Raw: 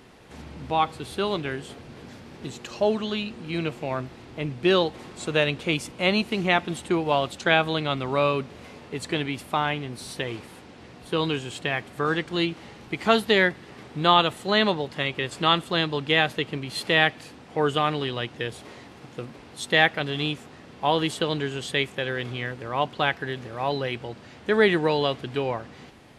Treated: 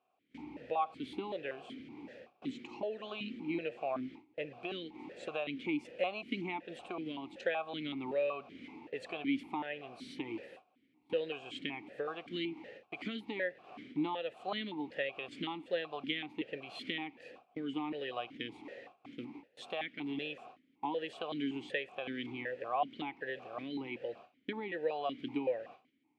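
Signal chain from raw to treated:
noise gate with hold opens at −34 dBFS
downward compressor 6 to 1, threshold −27 dBFS, peak gain reduction 13.5 dB
formant filter that steps through the vowels 5.3 Hz
level +5 dB

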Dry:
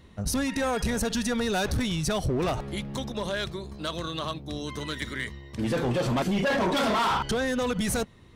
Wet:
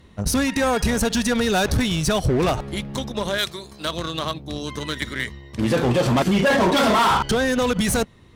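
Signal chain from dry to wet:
harmonic generator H 3 −18 dB, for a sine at −22 dBFS
0:03.38–0:03.85: spectral tilt +2.5 dB per octave
level +7 dB

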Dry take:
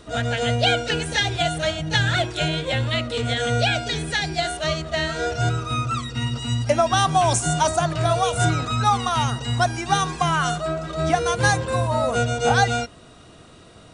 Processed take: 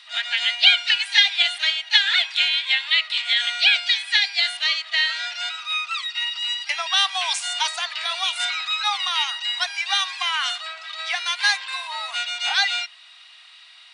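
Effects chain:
Butterworth high-pass 810 Hz 48 dB per octave
flat-topped bell 3,000 Hz +14.5 dB
level −6 dB

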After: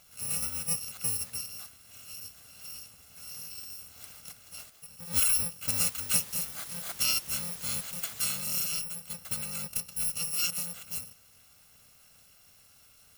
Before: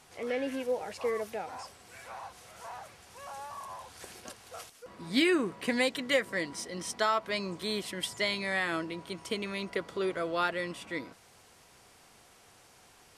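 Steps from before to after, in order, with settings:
samples in bit-reversed order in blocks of 128 samples
0:05.71–0:08.40: background noise white −48 dBFS

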